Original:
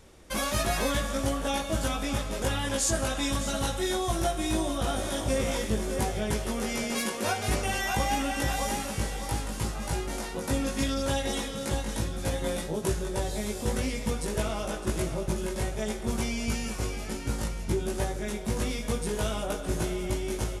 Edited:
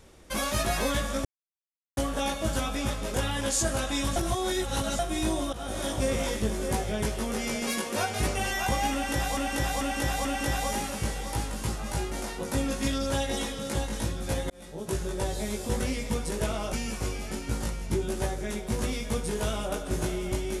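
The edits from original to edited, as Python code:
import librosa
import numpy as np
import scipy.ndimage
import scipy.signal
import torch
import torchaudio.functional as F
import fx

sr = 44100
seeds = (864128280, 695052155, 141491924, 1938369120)

y = fx.edit(x, sr, fx.insert_silence(at_s=1.25, length_s=0.72),
    fx.reverse_span(start_s=3.44, length_s=0.83),
    fx.fade_in_from(start_s=4.81, length_s=0.28, floor_db=-15.5),
    fx.repeat(start_s=8.21, length_s=0.44, count=4),
    fx.fade_in_span(start_s=12.46, length_s=0.58),
    fx.cut(start_s=14.69, length_s=1.82), tone=tone)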